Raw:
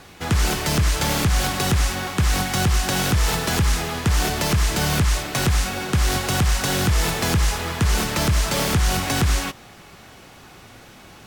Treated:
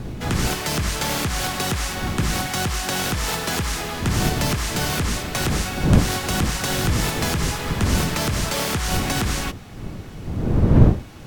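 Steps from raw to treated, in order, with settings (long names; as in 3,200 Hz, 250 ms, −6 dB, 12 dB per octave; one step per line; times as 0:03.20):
wind on the microphone 130 Hz −17 dBFS
low-shelf EQ 140 Hz −8.5 dB
level −1 dB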